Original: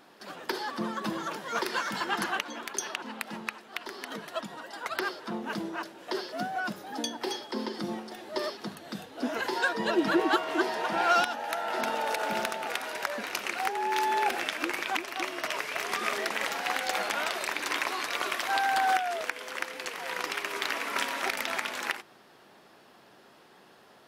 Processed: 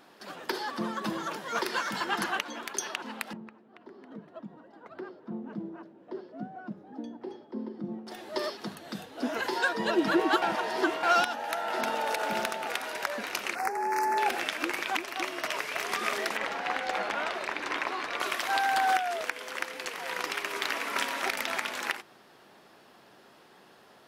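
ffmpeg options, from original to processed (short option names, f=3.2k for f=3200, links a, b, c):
-filter_complex "[0:a]asettb=1/sr,asplit=3[a][b][c];[a]atrim=end=3.334[d];[b]atrim=start=3.33:end=8.07,asetpts=PTS-STARTPTS,afade=t=in:d=0.004:c=qsin,afade=t=out:st=4.736:d=0.004:c=qsin,bandpass=f=190:t=q:w=0.94[e];[c]atrim=start=8.066[f];[d][e]acrossfade=d=0.004:c1=hsin:c2=qsin[g];[g][f]acrossfade=d=0.004:c1=qsin:c2=hsin,asettb=1/sr,asplit=3[h][i][j];[h]atrim=end=13.554[k];[i]atrim=start=13.55:end=14.18,asetpts=PTS-STARTPTS,afade=t=in:d=0.004:c=qsin,afade=t=out:st=0.626:d=0.004:c=qsin,asuperstop=centerf=3300:order=4:qfactor=1.1[l];[j]atrim=start=14.176[m];[k][l]acrossfade=d=0.004:c1=hsin:c2=qsin[n];[n][m]acrossfade=d=0.004:c1=qsin:c2=hsin,asettb=1/sr,asplit=3[o][p][q];[o]atrim=end=16.374[r];[p]atrim=start=16.37:end=18.2,asetpts=PTS-STARTPTS,afade=t=in:d=0.004:c=qsin,afade=t=out:st=1.826:d=0.004:c=qsin,aemphasis=mode=reproduction:type=75fm[s];[q]atrim=start=18.196[t];[r][s]acrossfade=d=0.004:c1=hsin:c2=qsin[u];[u][t]acrossfade=d=0.004:c1=qsin:c2=hsin,asplit=3[v][w][x];[v]atrim=end=10.422[y];[w]atrim=start=10.418:end=11.032,asetpts=PTS-STARTPTS,areverse[z];[x]atrim=start=11.028[aa];[y][z]acrossfade=d=0.004:c1=hsin:c2=hsin[ab];[ab][aa]acrossfade=d=0.004:c1=hsin:c2=hsin"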